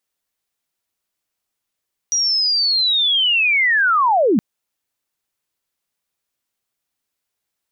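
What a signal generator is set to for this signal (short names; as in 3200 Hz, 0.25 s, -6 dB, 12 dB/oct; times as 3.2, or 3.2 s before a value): chirp linear 5800 Hz -> 180 Hz -15 dBFS -> -11.5 dBFS 2.27 s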